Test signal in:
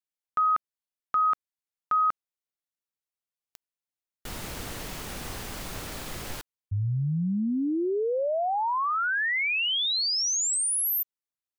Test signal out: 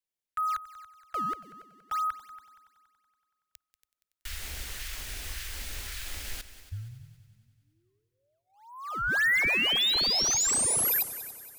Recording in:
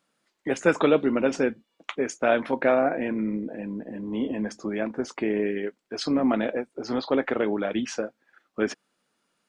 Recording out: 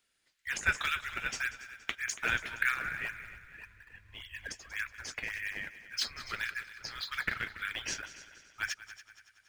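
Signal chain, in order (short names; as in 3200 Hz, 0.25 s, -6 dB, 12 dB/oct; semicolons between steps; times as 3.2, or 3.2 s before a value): inverse Chebyshev band-stop 170–740 Hz, stop band 50 dB; dynamic EQ 1500 Hz, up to +3 dB, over -45 dBFS, Q 1.8; in parallel at -11 dB: decimation with a swept rate 17×, swing 160% 1.8 Hz; on the sum: multi-head echo 94 ms, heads second and third, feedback 46%, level -16 dB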